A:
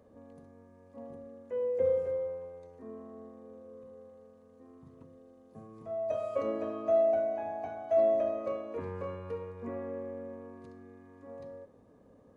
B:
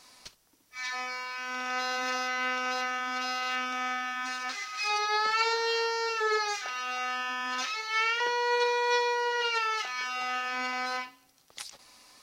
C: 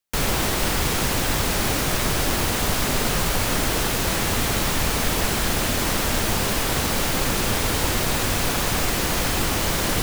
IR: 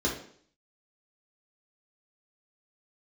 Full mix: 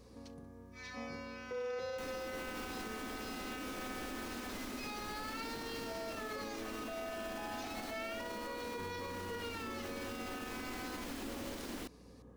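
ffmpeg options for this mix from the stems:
-filter_complex "[0:a]alimiter=level_in=1.41:limit=0.0631:level=0:latency=1:release=365,volume=0.708,equalizer=f=610:w=7.7:g=-15,volume=1.26[s0];[1:a]volume=0.2[s1];[2:a]lowshelf=f=190:t=q:w=3:g=-9,acrossover=split=320|5500[s2][s3][s4];[s2]acompressor=threshold=0.0316:ratio=4[s5];[s3]acompressor=threshold=0.02:ratio=4[s6];[s4]acompressor=threshold=0.00794:ratio=4[s7];[s5][s6][s7]amix=inputs=3:normalize=0,adelay=1850,volume=0.282[s8];[s0][s8]amix=inputs=2:normalize=0,aeval=exprs='val(0)+0.001*(sin(2*PI*60*n/s)+sin(2*PI*2*60*n/s)/2+sin(2*PI*3*60*n/s)/3+sin(2*PI*4*60*n/s)/4+sin(2*PI*5*60*n/s)/5)':c=same,alimiter=level_in=2.66:limit=0.0631:level=0:latency=1:release=161,volume=0.376,volume=1[s9];[s1][s9]amix=inputs=2:normalize=0,alimiter=level_in=2.99:limit=0.0631:level=0:latency=1:release=36,volume=0.335"

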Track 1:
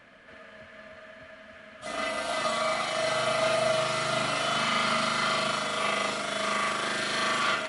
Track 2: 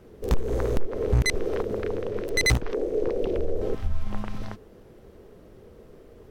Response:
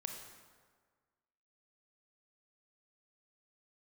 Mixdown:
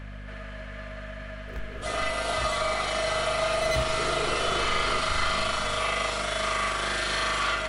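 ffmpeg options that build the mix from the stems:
-filter_complex "[0:a]equalizer=f=220:w=2.2:g=-12,acompressor=threshold=0.02:ratio=2,aeval=exprs='val(0)+0.00631*(sin(2*PI*50*n/s)+sin(2*PI*2*50*n/s)/2+sin(2*PI*3*50*n/s)/3+sin(2*PI*4*50*n/s)/4+sin(2*PI*5*50*n/s)/5)':c=same,volume=1.33,asplit=2[s0][s1];[s1]volume=0.631[s2];[1:a]equalizer=f=8600:t=o:w=1.9:g=-2.5,adelay=1250,volume=0.299,afade=t=in:st=3.56:d=0.26:silence=0.375837,asplit=2[s3][s4];[s4]volume=0.447[s5];[2:a]atrim=start_sample=2205[s6];[s2][s5]amix=inputs=2:normalize=0[s7];[s7][s6]afir=irnorm=-1:irlink=0[s8];[s0][s3][s8]amix=inputs=3:normalize=0"

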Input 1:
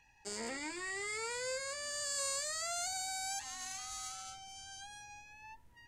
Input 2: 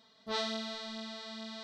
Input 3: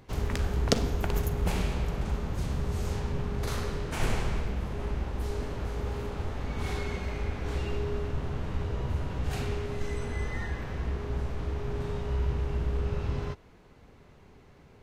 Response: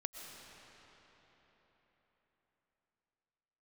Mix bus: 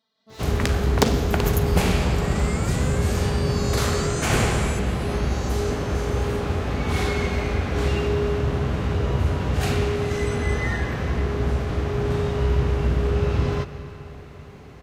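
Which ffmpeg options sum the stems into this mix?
-filter_complex "[0:a]asplit=2[s0][s1];[s1]afreqshift=0.58[s2];[s0][s2]amix=inputs=2:normalize=1,adelay=1400,volume=0.473[s3];[1:a]asoftclip=type=tanh:threshold=0.0112,volume=0.178,asplit=2[s4][s5];[s5]volume=0.501[s6];[2:a]bandreject=f=920:w=15,aeval=exprs='0.2*(abs(mod(val(0)/0.2+3,4)-2)-1)':c=same,adelay=300,volume=0.596,asplit=2[s7][s8];[s8]volume=0.668[s9];[3:a]atrim=start_sample=2205[s10];[s6][s9]amix=inputs=2:normalize=0[s11];[s11][s10]afir=irnorm=-1:irlink=0[s12];[s3][s4][s7][s12]amix=inputs=4:normalize=0,highpass=65,dynaudnorm=f=120:g=5:m=3.98"

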